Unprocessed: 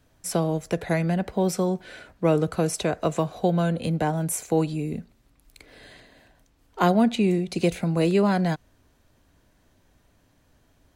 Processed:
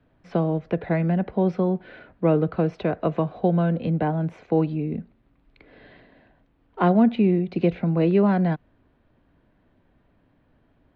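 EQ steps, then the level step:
high-frequency loss of the air 260 metres
three-way crossover with the lows and the highs turned down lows −13 dB, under 160 Hz, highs −24 dB, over 4,300 Hz
low-shelf EQ 190 Hz +11 dB
0.0 dB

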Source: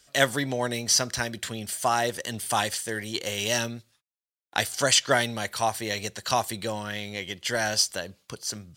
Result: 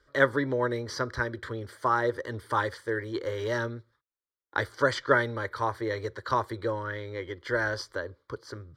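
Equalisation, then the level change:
high-frequency loss of the air 400 metres
phaser with its sweep stopped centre 720 Hz, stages 6
+5.5 dB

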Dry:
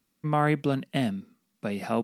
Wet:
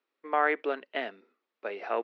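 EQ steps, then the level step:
high-frequency loss of the air 310 metres
dynamic equaliser 1,800 Hz, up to +7 dB, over −44 dBFS, Q 1.3
elliptic band-pass filter 390–7,500 Hz, stop band 40 dB
0.0 dB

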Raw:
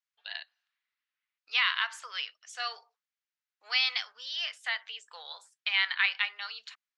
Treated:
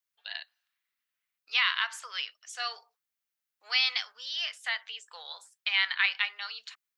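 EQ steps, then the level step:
high-shelf EQ 9,100 Hz +10.5 dB
0.0 dB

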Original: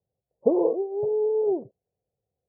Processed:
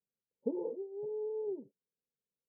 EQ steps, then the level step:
formant resonators in series u
phaser with its sweep stopped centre 480 Hz, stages 8
0.0 dB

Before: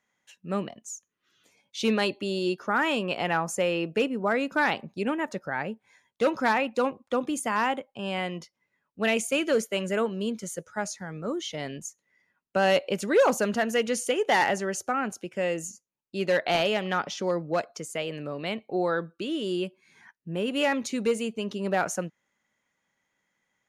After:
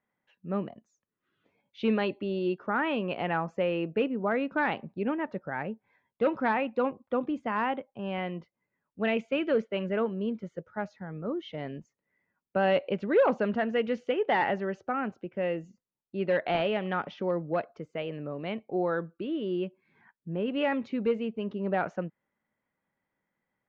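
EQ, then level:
dynamic equaliser 3,200 Hz, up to +6 dB, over −40 dBFS, Q 0.76
high-frequency loss of the air 150 metres
head-to-tape spacing loss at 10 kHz 37 dB
0.0 dB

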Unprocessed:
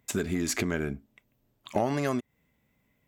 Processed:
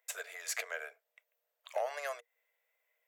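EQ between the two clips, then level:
Chebyshev high-pass with heavy ripple 460 Hz, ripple 6 dB
high-shelf EQ 9,200 Hz +8 dB
−3.5 dB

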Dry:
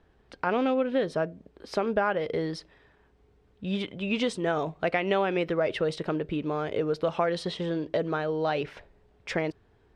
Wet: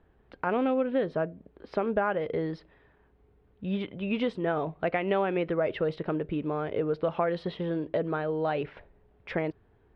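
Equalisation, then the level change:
high-frequency loss of the air 380 metres
high-shelf EQ 6,300 Hz +4.5 dB
0.0 dB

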